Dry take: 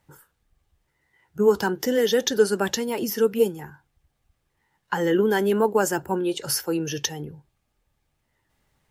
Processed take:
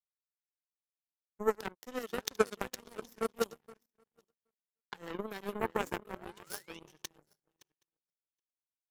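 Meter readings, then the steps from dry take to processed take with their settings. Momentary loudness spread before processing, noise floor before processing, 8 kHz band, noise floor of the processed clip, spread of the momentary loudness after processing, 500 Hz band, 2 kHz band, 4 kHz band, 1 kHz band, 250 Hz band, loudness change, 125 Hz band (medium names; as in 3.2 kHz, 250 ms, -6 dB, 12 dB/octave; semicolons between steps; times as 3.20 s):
9 LU, -74 dBFS, -17.5 dB, under -85 dBFS, 15 LU, -15.5 dB, -12.5 dB, -16.0 dB, -11.0 dB, -18.0 dB, -15.0 dB, -17.5 dB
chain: backward echo that repeats 386 ms, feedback 54%, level -7 dB; painted sound rise, 5.79–6.80 s, 220–3100 Hz -30 dBFS; power-law waveshaper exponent 3; trim -2 dB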